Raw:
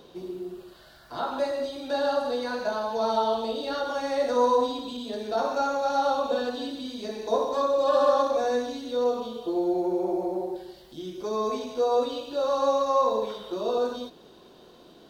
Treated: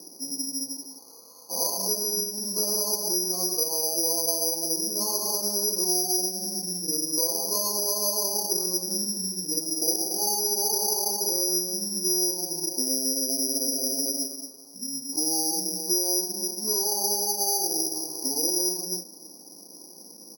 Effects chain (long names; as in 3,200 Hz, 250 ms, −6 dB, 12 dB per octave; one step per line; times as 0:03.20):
elliptic band-pass filter 280–1,300 Hz, stop band 60 dB
comb filter 4.4 ms, depth 37%
downward compressor 6 to 1, threshold −31 dBFS, peak gain reduction 13 dB
bad sample-rate conversion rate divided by 6×, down filtered, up zero stuff
wrong playback speed 45 rpm record played at 33 rpm